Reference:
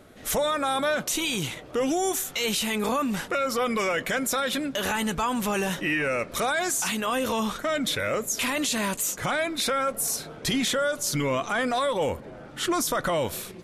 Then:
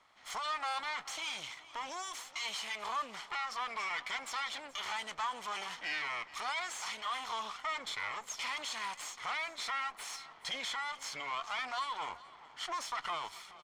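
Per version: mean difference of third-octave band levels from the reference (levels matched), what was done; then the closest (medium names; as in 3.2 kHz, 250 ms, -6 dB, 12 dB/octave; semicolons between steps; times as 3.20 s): 9.0 dB: comb filter that takes the minimum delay 0.94 ms; three-band isolator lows -22 dB, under 580 Hz, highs -23 dB, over 7 kHz; delay 427 ms -18.5 dB; trim -8 dB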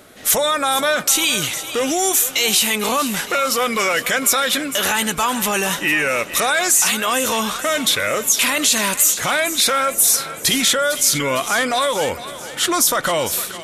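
5.0 dB: tilt EQ +2 dB/octave; on a send: thinning echo 456 ms, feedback 56%, high-pass 780 Hz, level -12 dB; on the sum: trim +7 dB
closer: second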